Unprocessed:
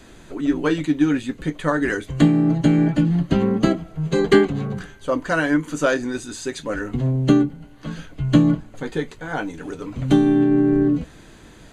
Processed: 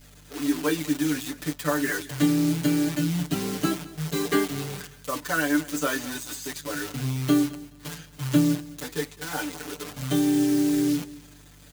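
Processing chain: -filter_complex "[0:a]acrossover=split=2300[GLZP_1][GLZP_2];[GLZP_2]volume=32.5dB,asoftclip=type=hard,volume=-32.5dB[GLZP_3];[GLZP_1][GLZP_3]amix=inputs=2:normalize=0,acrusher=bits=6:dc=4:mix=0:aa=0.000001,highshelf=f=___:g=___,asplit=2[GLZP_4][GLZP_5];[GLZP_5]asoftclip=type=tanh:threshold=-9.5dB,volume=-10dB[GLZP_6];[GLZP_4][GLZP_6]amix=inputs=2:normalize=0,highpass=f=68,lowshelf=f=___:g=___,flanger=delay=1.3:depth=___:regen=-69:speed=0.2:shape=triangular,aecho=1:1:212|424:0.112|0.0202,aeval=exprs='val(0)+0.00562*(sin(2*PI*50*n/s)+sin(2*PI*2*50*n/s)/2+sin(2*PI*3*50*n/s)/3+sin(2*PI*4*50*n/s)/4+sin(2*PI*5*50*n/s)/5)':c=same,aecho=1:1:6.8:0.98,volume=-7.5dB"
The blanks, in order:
3100, 10, 150, -6.5, 8.9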